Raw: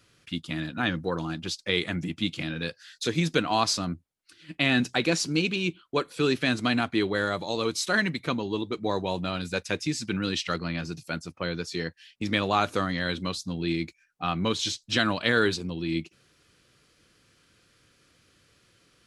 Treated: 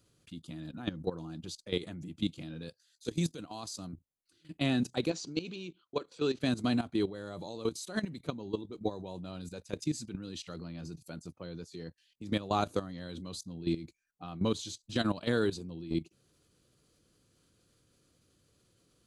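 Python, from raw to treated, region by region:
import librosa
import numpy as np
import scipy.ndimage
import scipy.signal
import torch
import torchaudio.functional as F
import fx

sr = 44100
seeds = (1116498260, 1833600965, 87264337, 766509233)

y = fx.chain(x, sr, fx.high_shelf(hz=4100.0, db=9.0),
    fx.level_steps(step_db=13), at=(2.69, 3.93))
y = fx.chain(y, sr, fx.lowpass(hz=6500.0, slope=24),
    fx.low_shelf(hz=270.0, db=-9.5), at=(5.1, 6.41))
y = fx.peak_eq(y, sr, hz=2000.0, db=-13.0, octaves=1.8)
y = fx.notch(y, sr, hz=5400.0, q=10.0)
y = fx.level_steps(y, sr, step_db=14)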